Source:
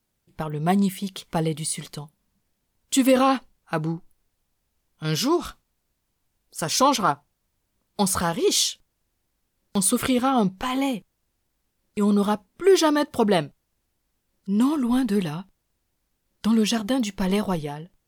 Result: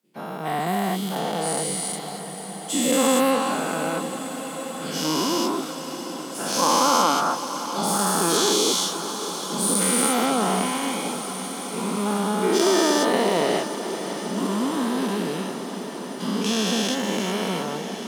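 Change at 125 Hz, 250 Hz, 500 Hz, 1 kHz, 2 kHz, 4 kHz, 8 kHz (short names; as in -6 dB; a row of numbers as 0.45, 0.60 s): -3.0, -1.5, +1.5, +3.5, +4.0, +4.0, +5.0 dB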